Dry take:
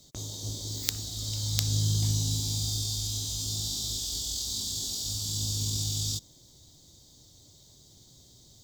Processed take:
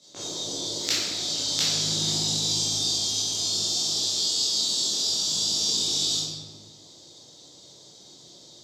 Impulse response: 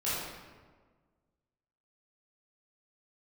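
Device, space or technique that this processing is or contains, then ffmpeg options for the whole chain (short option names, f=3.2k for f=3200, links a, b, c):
supermarket ceiling speaker: -filter_complex "[0:a]highpass=320,lowpass=6.5k[a];[1:a]atrim=start_sample=2205[b];[a][b]afir=irnorm=-1:irlink=0,volume=4dB"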